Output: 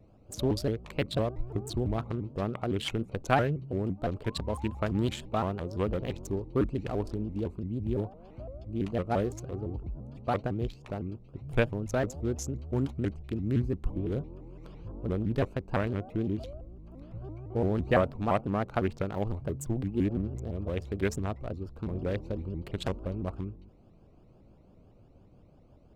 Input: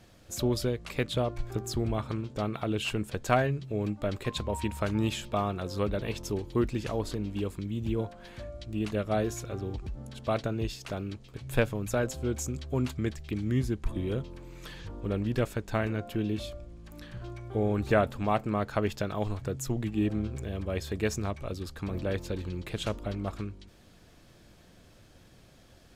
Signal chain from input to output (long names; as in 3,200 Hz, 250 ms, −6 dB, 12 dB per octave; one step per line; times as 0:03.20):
adaptive Wiener filter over 25 samples
pitch modulation by a square or saw wave saw up 5.9 Hz, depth 250 cents